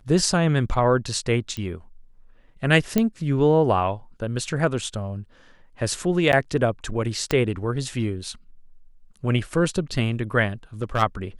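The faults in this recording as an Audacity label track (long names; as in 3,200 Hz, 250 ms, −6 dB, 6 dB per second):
1.570000	1.570000	click −18 dBFS
2.980000	2.980000	click −7 dBFS
6.320000	6.330000	drop-out 9.5 ms
7.310000	7.310000	click −8 dBFS
10.830000	11.030000	clipping −16.5 dBFS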